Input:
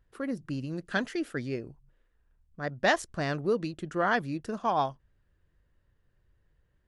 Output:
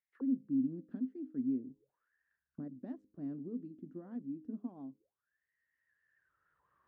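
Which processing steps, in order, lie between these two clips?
recorder AGC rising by 13 dB/s; high-pass 54 Hz; bass shelf 340 Hz +9 dB; de-hum 103.6 Hz, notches 5; auto-wah 260–2200 Hz, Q 14, down, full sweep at -27 dBFS; trim -3.5 dB

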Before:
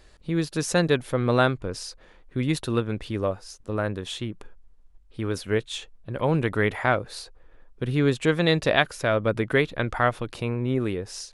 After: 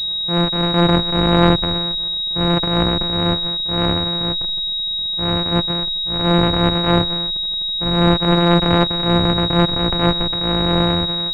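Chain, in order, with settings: sorted samples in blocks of 256 samples; transient shaper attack -8 dB, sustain +8 dB; class-D stage that switches slowly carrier 3.8 kHz; trim +8.5 dB

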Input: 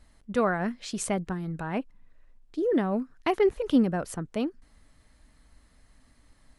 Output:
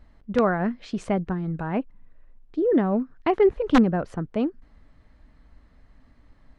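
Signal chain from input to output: integer overflow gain 13.5 dB; tape spacing loss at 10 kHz 27 dB; trim +5.5 dB

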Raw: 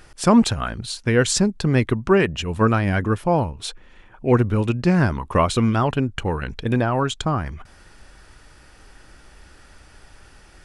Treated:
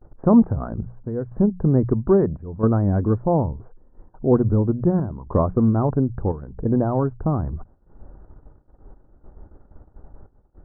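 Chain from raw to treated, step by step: hum notches 60/120/180 Hz; gate -46 dBFS, range -27 dB; in parallel at +0.5 dB: compression, threshold -28 dBFS, peak gain reduction 17 dB; on the sum: square tremolo 0.76 Hz, depth 65%, duty 80%; Gaussian low-pass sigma 9.6 samples; tape noise reduction on one side only decoder only

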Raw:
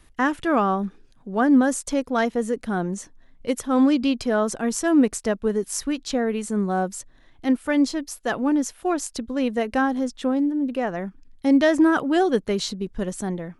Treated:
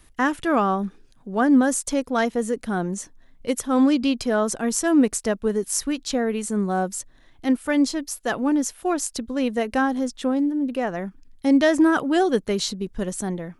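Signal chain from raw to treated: treble shelf 6.4 kHz +6.5 dB

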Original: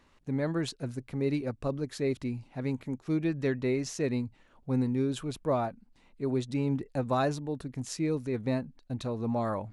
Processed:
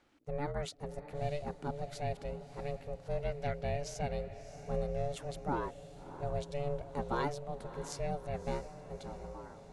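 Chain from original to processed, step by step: fade out at the end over 1.23 s; ring modulator 290 Hz; echo that smears into a reverb 636 ms, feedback 53%, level -13 dB; trim -3.5 dB

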